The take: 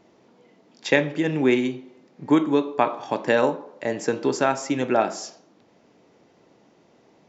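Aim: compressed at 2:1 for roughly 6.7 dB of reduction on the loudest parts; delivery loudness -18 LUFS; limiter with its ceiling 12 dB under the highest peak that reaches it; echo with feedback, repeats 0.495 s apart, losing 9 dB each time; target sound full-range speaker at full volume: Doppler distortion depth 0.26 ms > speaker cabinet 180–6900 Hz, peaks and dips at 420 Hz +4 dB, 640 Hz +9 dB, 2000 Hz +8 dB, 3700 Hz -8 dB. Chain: compressor 2:1, threshold -26 dBFS; limiter -20.5 dBFS; feedback echo 0.495 s, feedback 35%, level -9 dB; Doppler distortion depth 0.26 ms; speaker cabinet 180–6900 Hz, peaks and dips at 420 Hz +4 dB, 640 Hz +9 dB, 2000 Hz +8 dB, 3700 Hz -8 dB; gain +11.5 dB

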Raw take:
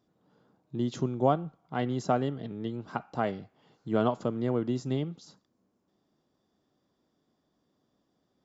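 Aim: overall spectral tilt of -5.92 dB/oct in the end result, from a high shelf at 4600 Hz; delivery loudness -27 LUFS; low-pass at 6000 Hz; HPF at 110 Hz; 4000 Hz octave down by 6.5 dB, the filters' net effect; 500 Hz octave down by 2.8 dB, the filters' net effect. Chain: HPF 110 Hz; LPF 6000 Hz; bell 500 Hz -3.5 dB; bell 4000 Hz -5 dB; high shelf 4600 Hz -7 dB; gain +6 dB

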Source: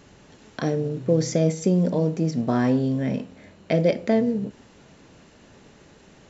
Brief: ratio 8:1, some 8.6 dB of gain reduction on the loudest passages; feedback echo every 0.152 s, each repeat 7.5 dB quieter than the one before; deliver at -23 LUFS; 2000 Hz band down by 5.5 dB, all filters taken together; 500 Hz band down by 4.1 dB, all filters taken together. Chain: bell 500 Hz -4.5 dB; bell 2000 Hz -6.5 dB; compressor 8:1, threshold -26 dBFS; feedback echo 0.152 s, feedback 42%, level -7.5 dB; gain +8 dB

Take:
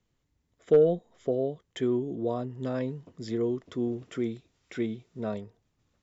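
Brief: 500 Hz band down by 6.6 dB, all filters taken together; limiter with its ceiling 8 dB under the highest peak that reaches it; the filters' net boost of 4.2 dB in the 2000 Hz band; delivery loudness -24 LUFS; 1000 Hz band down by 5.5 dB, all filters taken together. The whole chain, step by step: bell 500 Hz -7 dB; bell 1000 Hz -6.5 dB; bell 2000 Hz +7.5 dB; gain +12.5 dB; limiter -11.5 dBFS

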